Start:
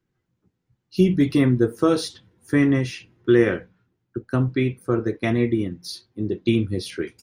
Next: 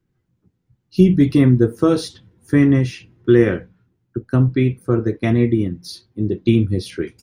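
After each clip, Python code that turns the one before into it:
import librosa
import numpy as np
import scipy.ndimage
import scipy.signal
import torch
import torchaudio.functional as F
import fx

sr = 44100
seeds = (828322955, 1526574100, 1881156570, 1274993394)

y = fx.low_shelf(x, sr, hz=300.0, db=8.5)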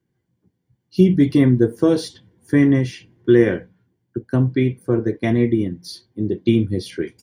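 y = fx.notch_comb(x, sr, f0_hz=1300.0)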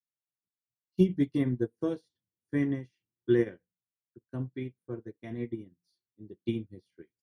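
y = fx.upward_expand(x, sr, threshold_db=-31.0, expansion=2.5)
y = y * librosa.db_to_amplitude(-8.0)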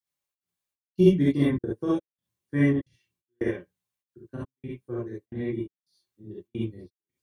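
y = fx.step_gate(x, sr, bpm=110, pattern='xx.xx..xx', floor_db=-60.0, edge_ms=4.5)
y = fx.rev_gated(y, sr, seeds[0], gate_ms=90, shape='rising', drr_db=-7.5)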